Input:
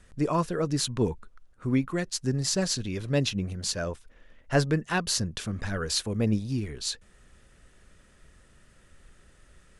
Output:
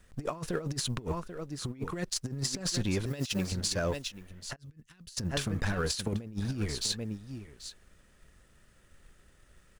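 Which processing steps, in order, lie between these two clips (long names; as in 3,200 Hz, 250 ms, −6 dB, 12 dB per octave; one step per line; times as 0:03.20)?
mu-law and A-law mismatch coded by A
0:03.06–0:03.52: spectral tilt +2.5 dB per octave
on a send: single-tap delay 787 ms −15.5 dB
on the sum: compressor whose output falls as the input rises −32 dBFS, ratio −0.5
0:04.56–0:05.17: guitar amp tone stack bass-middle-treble 6-0-2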